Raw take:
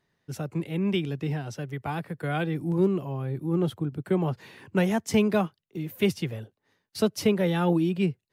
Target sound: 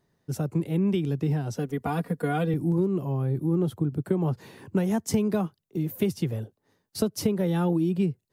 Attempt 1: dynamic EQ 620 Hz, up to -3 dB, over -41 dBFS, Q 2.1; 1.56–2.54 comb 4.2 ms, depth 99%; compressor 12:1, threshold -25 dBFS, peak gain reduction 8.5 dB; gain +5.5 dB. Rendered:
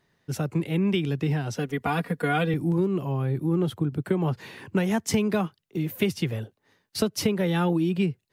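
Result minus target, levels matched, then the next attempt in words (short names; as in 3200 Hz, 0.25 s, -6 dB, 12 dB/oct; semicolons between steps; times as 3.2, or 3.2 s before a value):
2000 Hz band +7.5 dB
dynamic EQ 620 Hz, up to -3 dB, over -41 dBFS, Q 2.1; 1.56–2.54 comb 4.2 ms, depth 99%; compressor 12:1, threshold -25 dBFS, peak gain reduction 8.5 dB; bell 2400 Hz -10 dB 2.1 oct; gain +5.5 dB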